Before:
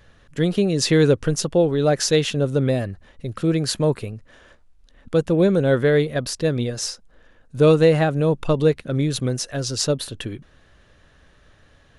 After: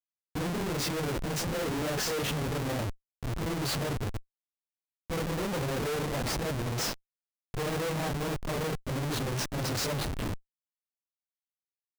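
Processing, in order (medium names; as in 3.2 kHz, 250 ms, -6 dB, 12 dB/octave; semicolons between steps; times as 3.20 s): phase randomisation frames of 100 ms; Schmitt trigger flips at -28 dBFS; peak limiter -25.5 dBFS, peak gain reduction 10.5 dB; trim -4.5 dB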